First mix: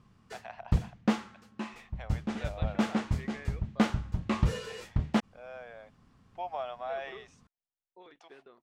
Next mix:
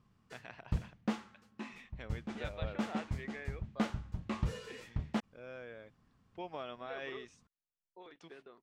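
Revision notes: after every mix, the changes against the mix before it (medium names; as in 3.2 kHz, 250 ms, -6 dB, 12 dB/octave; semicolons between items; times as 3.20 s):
first voice: remove resonant high-pass 720 Hz, resonance Q 4.3; background -8.0 dB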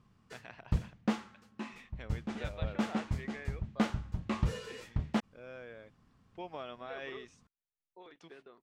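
background +3.5 dB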